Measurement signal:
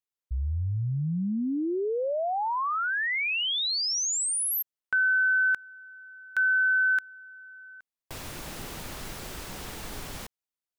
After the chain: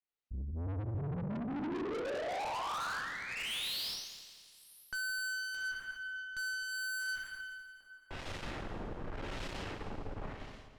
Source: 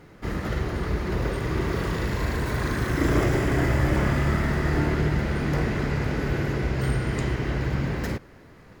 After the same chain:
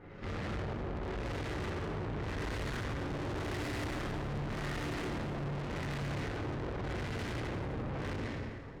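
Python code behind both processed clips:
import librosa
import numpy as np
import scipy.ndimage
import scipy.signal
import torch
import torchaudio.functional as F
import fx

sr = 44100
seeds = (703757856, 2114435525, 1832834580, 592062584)

y = fx.dynamic_eq(x, sr, hz=100.0, q=4.2, threshold_db=-44.0, ratio=6.0, max_db=4)
y = fx.rev_gated(y, sr, seeds[0], gate_ms=440, shape='falling', drr_db=-5.5)
y = fx.filter_lfo_lowpass(y, sr, shape='sine', hz=0.87, low_hz=780.0, high_hz=4200.0, q=0.82)
y = fx.tube_stage(y, sr, drive_db=33.0, bias=0.5)
y = fx.echo_heads(y, sr, ms=85, heads='second and third', feedback_pct=50, wet_db=-14)
y = F.gain(torch.from_numpy(y), -3.5).numpy()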